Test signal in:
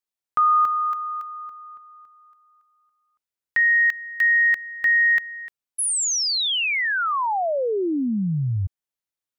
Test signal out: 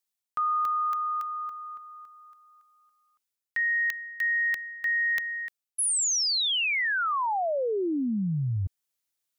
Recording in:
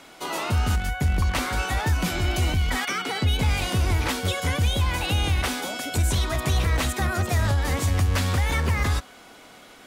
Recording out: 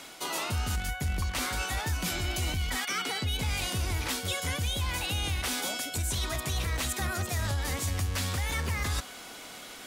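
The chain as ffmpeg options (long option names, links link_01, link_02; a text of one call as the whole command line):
ffmpeg -i in.wav -af "highshelf=frequency=2800:gain=9,areverse,acompressor=threshold=-25dB:ratio=6:attack=1.2:release=886:knee=6:detection=peak,areverse" out.wav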